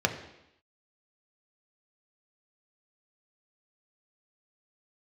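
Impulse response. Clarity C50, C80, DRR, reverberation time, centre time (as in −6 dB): 10.0 dB, 12.0 dB, 4.0 dB, 0.85 s, 15 ms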